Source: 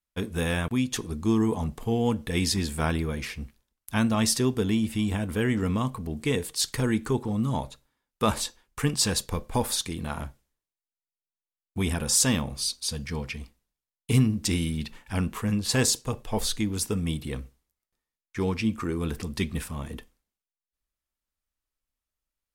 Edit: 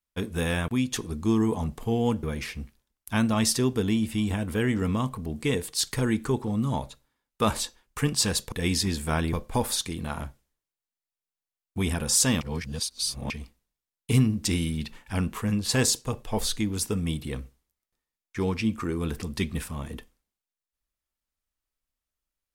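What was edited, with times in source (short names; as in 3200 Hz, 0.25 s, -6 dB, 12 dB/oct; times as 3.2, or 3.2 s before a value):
2.23–3.04 move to 9.33
12.41–13.3 reverse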